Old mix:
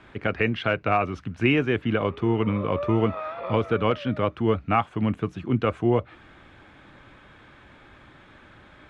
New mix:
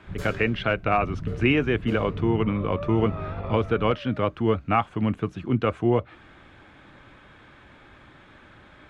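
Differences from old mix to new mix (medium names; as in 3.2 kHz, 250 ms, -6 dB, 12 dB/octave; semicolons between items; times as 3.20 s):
first sound: unmuted; second sound -4.5 dB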